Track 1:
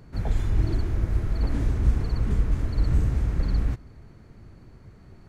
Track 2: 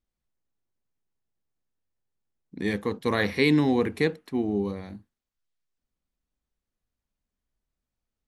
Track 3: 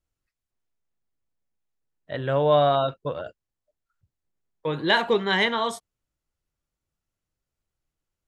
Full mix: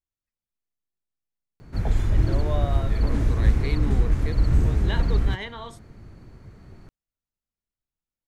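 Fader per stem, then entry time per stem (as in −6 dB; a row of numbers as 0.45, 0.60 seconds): +2.5, −12.0, −13.0 decibels; 1.60, 0.25, 0.00 seconds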